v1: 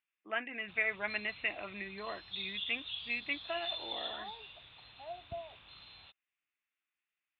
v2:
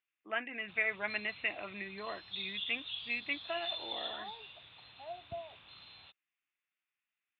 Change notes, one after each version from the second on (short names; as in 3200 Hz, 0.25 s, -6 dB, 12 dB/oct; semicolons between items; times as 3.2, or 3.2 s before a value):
master: add HPF 80 Hz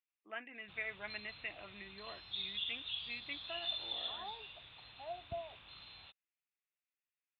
first voice -9.0 dB; master: remove HPF 80 Hz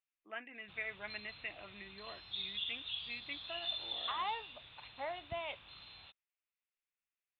second voice: remove double band-pass 530 Hz, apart 0.73 oct